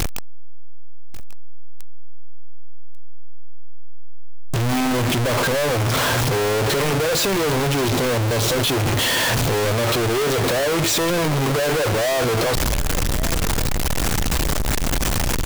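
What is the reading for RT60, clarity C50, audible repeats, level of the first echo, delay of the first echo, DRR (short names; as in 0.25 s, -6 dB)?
none, none, 1, -17.0 dB, 1.142 s, none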